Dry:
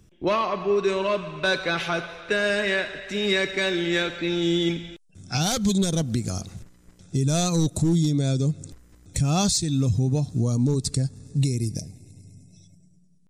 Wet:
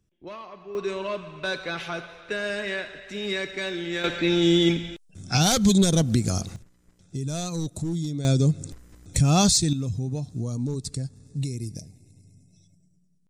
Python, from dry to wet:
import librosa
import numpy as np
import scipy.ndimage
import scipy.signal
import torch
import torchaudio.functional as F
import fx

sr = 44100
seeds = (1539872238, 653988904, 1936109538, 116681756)

y = fx.gain(x, sr, db=fx.steps((0.0, -16.5), (0.75, -6.0), (4.04, 3.5), (6.56, -7.5), (8.25, 3.0), (9.73, -6.5)))